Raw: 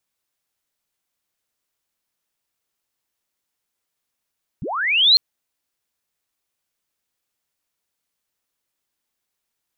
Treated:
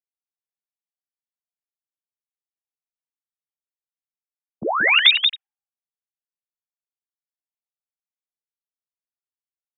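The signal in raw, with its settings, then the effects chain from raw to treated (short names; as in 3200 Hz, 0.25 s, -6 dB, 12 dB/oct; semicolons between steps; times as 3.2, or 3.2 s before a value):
chirp linear 94 Hz -> 4300 Hz -25.5 dBFS -> -8 dBFS 0.55 s
sine-wave speech; on a send: echo 0.182 s -5 dB; on the sum: low-pass opened by the level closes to 330 Hz, open at -16.5 dBFS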